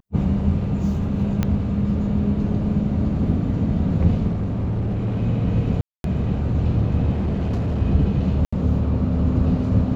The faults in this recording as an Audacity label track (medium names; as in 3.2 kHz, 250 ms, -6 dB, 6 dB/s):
1.430000	1.430000	pop -9 dBFS
4.280000	5.230000	clipped -19.5 dBFS
5.810000	6.040000	dropout 232 ms
7.130000	7.820000	clipped -19 dBFS
8.450000	8.530000	dropout 75 ms